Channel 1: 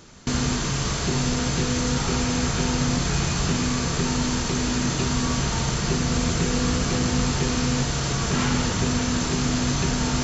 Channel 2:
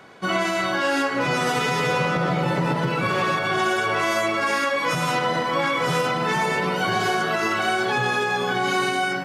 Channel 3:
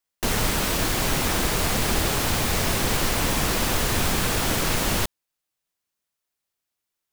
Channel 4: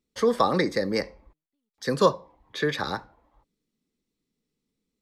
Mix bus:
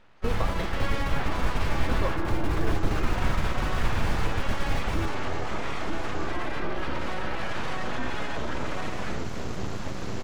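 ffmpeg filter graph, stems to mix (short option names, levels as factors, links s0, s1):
-filter_complex "[0:a]adelay=2450,volume=0.596,asplit=3[s0][s1][s2];[s0]atrim=end=6.32,asetpts=PTS-STARTPTS,afade=t=out:st=6.316:d=0.004:c=hsin[s3];[s1]atrim=start=6.32:end=7.46,asetpts=PTS-STARTPTS,volume=0[s4];[s2]atrim=start=7.46,asetpts=PTS-STARTPTS,afade=t=in:d=0.004:c=hsin[s5];[s3][s4][s5]concat=n=3:v=0:a=1[s6];[1:a]highpass=120,asubboost=boost=6.5:cutoff=210,dynaudnorm=f=100:g=17:m=3.76,volume=0.501[s7];[2:a]lowshelf=f=140:g=10.5,volume=0.794[s8];[3:a]volume=0.75[s9];[s8][s9]amix=inputs=2:normalize=0,agate=range=0.0501:threshold=0.126:ratio=16:detection=peak,alimiter=limit=0.2:level=0:latency=1:release=204,volume=1[s10];[s6][s7]amix=inputs=2:normalize=0,aeval=exprs='abs(val(0))':c=same,alimiter=limit=0.158:level=0:latency=1:release=63,volume=1[s11];[s10][s11]amix=inputs=2:normalize=0,lowpass=f=1400:p=1,equalizer=f=370:w=0.77:g=-3"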